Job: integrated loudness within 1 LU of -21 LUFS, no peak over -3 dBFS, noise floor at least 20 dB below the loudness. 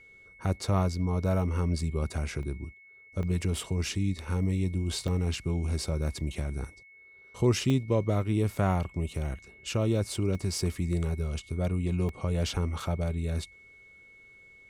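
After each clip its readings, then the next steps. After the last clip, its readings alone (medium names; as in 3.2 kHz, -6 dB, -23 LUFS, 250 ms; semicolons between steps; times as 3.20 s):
dropouts 7; longest dropout 2.0 ms; steady tone 2.2 kHz; tone level -52 dBFS; loudness -30.5 LUFS; peak level -14.5 dBFS; loudness target -21.0 LUFS
-> interpolate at 2.43/3.23/5.08/7.70/10.35/12.09/12.80 s, 2 ms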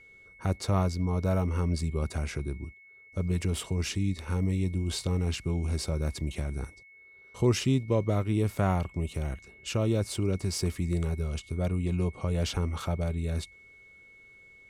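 dropouts 0; steady tone 2.2 kHz; tone level -52 dBFS
-> band-stop 2.2 kHz, Q 30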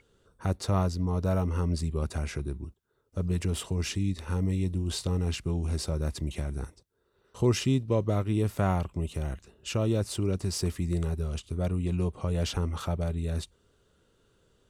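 steady tone not found; loudness -30.5 LUFS; peak level -14.5 dBFS; loudness target -21.0 LUFS
-> trim +9.5 dB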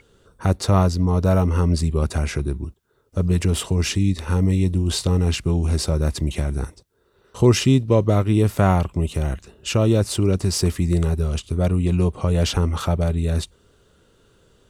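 loudness -21.0 LUFS; peak level -5.0 dBFS; noise floor -59 dBFS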